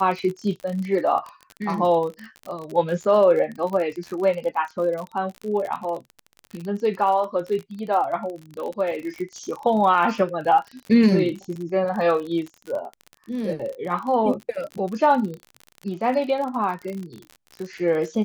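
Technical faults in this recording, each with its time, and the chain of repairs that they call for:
crackle 42 per s -29 dBFS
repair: de-click

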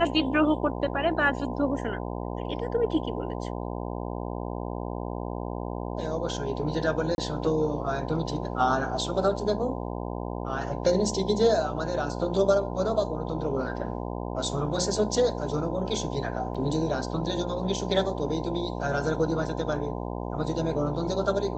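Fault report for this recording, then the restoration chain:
buzz 60 Hz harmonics 17 -33 dBFS
7.15–7.18 s: dropout 31 ms
16.54–16.55 s: dropout 6.5 ms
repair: de-hum 60 Hz, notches 17; interpolate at 7.15 s, 31 ms; interpolate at 16.54 s, 6.5 ms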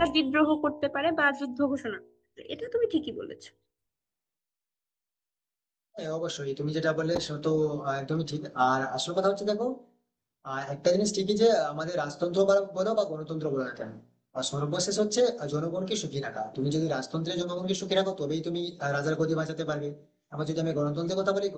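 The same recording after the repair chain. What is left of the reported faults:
nothing left

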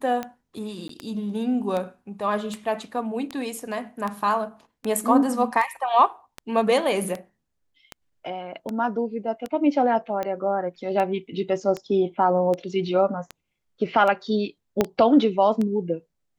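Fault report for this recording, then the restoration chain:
tick 78 rpm -16 dBFS
0.88–0.89 s: dropout 13 ms
14.81 s: pop -6 dBFS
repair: de-click; interpolate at 0.88 s, 13 ms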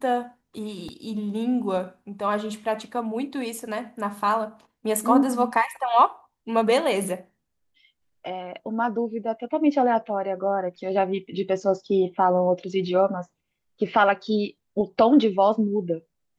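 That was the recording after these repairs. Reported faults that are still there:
14.81 s: pop

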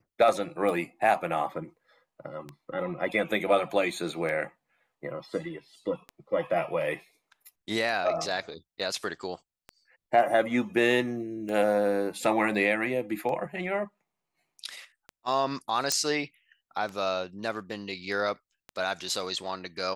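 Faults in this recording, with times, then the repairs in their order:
tick 33 1/3 rpm
15.92 s: pop -10 dBFS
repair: de-click

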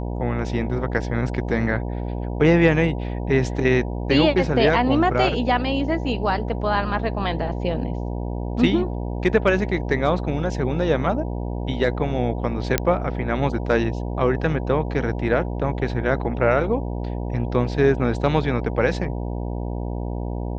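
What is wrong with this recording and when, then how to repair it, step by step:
buzz 60 Hz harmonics 16 -27 dBFS
12.78 s: pop -3 dBFS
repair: de-click; de-hum 60 Hz, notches 16

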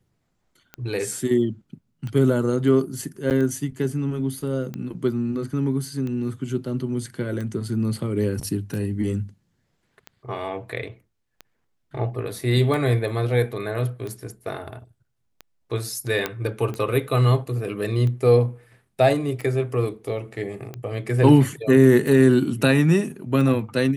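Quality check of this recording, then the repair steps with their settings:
tick 45 rpm -20 dBFS
3.30–3.31 s: dropout 8.7 ms
16.26 s: pop -9 dBFS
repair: de-click; interpolate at 3.30 s, 8.7 ms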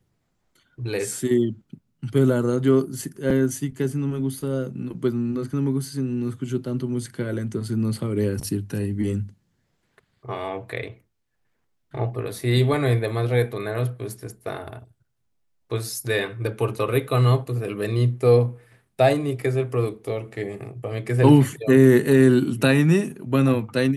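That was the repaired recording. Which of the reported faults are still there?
nothing left

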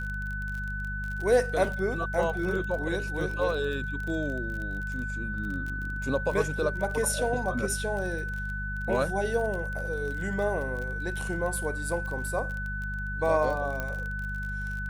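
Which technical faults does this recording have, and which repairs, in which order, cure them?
crackle 26 per s -33 dBFS
hum 50 Hz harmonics 4 -35 dBFS
whine 1.5 kHz -34 dBFS
13.80 s: pop -18 dBFS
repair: de-click; de-hum 50 Hz, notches 4; band-stop 1.5 kHz, Q 30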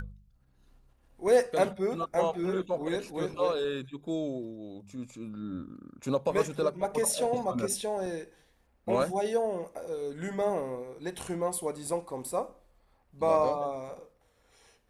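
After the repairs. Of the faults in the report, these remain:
nothing left

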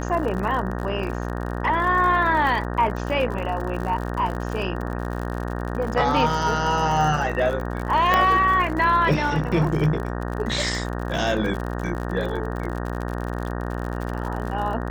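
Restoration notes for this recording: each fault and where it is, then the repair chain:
buzz 60 Hz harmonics 31 -28 dBFS
crackle 58 per s -29 dBFS
8.14 s: pop -6 dBFS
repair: de-click; de-hum 60 Hz, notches 31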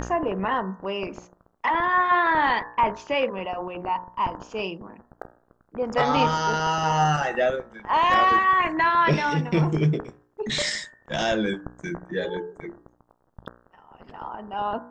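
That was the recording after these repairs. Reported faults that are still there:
8.14 s: pop

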